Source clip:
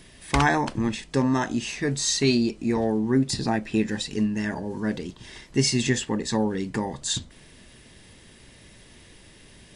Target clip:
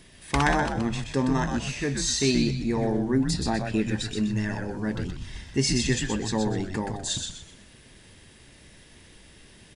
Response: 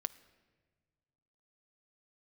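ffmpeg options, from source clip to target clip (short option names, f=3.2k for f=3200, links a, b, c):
-filter_complex "[0:a]asplit=3[a][b][c];[a]afade=t=out:st=4.95:d=0.02[d];[b]asubboost=boost=4.5:cutoff=160,afade=t=in:st=4.95:d=0.02,afade=t=out:st=5.44:d=0.02[e];[c]afade=t=in:st=5.44:d=0.02[f];[d][e][f]amix=inputs=3:normalize=0,asplit=5[g][h][i][j][k];[h]adelay=125,afreqshift=-100,volume=-5dB[l];[i]adelay=250,afreqshift=-200,volume=-14.9dB[m];[j]adelay=375,afreqshift=-300,volume=-24.8dB[n];[k]adelay=500,afreqshift=-400,volume=-34.7dB[o];[g][l][m][n][o]amix=inputs=5:normalize=0,volume=-2.5dB"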